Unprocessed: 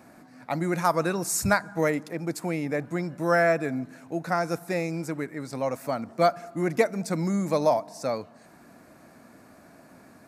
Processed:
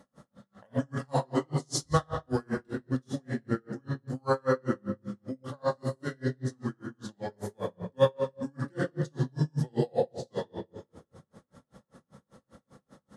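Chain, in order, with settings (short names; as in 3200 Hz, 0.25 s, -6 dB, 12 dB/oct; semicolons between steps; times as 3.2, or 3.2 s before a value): varispeed -22%; shoebox room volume 960 m³, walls mixed, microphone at 2.3 m; dB-linear tremolo 5.1 Hz, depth 38 dB; gain -4.5 dB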